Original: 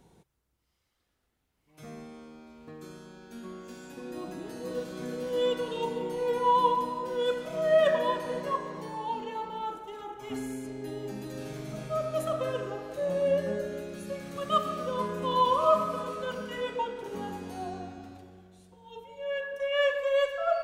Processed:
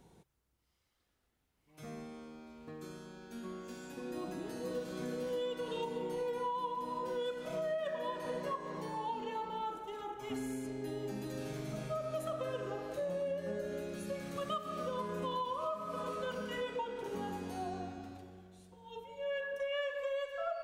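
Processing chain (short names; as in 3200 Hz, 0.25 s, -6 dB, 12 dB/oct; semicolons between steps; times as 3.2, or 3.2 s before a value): compressor 12:1, threshold -32 dBFS, peak gain reduction 15.5 dB; gain -2 dB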